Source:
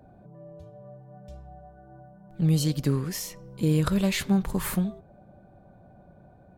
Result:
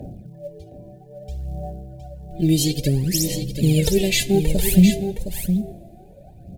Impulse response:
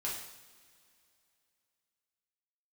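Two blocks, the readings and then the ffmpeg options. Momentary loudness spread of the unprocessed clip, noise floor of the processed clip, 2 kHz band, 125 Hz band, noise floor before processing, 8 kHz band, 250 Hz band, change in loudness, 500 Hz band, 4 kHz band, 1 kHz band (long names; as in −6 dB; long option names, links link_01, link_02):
11 LU, −45 dBFS, +7.0 dB, +6.5 dB, −54 dBFS, +11.5 dB, +7.5 dB, +6.5 dB, +10.0 dB, +10.5 dB, +0.5 dB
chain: -filter_complex "[0:a]aphaser=in_gain=1:out_gain=1:delay=3:decay=0.79:speed=0.6:type=sinusoidal,acrusher=bits=9:mode=log:mix=0:aa=0.000001,asuperstop=centerf=1200:order=4:qfactor=0.74,aecho=1:1:714:0.398,asplit=2[link_01][link_02];[1:a]atrim=start_sample=2205,asetrate=30429,aresample=44100[link_03];[link_02][link_03]afir=irnorm=-1:irlink=0,volume=-23.5dB[link_04];[link_01][link_04]amix=inputs=2:normalize=0,volume=6dB"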